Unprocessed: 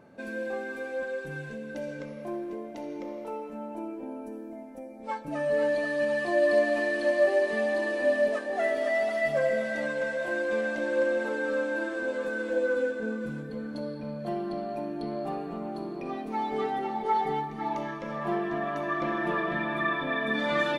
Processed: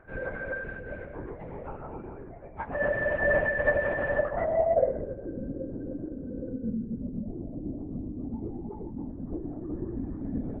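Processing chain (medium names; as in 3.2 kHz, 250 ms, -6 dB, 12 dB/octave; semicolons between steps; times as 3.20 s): low-pass sweep 1.7 kHz -> 250 Hz, 7.94–10.55 s; LPC vocoder at 8 kHz whisper; plain phase-vocoder stretch 0.51×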